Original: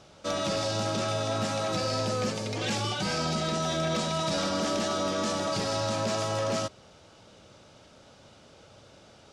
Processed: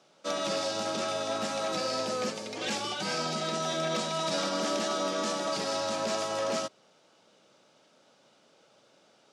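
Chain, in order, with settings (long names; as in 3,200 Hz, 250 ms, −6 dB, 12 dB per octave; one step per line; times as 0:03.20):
Bessel high-pass filter 240 Hz, order 8
expander for the loud parts 1.5 to 1, over −43 dBFS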